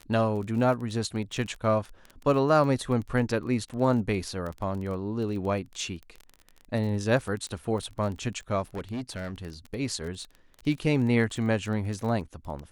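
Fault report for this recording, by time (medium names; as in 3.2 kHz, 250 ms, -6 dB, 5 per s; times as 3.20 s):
crackle 24 per s -33 dBFS
8.75–9.38 s: clipped -29.5 dBFS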